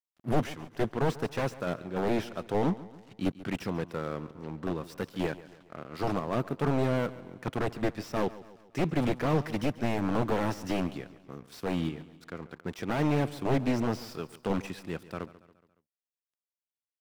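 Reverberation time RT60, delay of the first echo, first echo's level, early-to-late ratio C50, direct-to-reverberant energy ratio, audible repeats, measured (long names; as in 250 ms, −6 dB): no reverb audible, 140 ms, −17.5 dB, no reverb audible, no reverb audible, 3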